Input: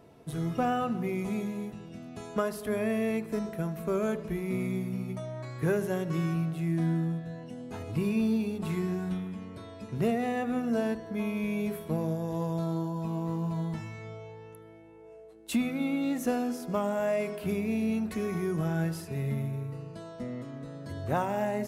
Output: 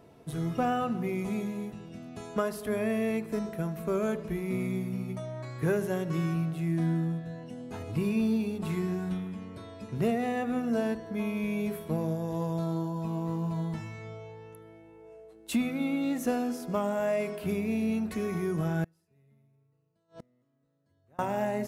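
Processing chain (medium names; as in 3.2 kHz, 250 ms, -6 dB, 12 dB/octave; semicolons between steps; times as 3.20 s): 18.84–21.19 s: inverted gate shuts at -35 dBFS, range -33 dB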